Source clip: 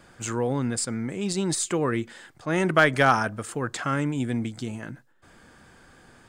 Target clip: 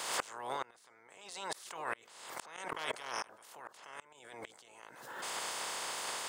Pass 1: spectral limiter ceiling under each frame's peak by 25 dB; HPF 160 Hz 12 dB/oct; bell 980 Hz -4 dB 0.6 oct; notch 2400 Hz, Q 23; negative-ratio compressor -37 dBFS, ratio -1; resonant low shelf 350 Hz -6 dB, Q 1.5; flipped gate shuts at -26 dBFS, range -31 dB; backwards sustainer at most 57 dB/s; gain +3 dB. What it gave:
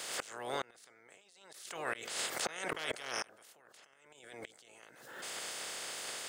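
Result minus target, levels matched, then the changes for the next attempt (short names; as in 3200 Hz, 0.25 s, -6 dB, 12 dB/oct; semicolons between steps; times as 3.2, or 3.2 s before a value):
1000 Hz band -5.0 dB
change: bell 980 Hz +6.5 dB 0.6 oct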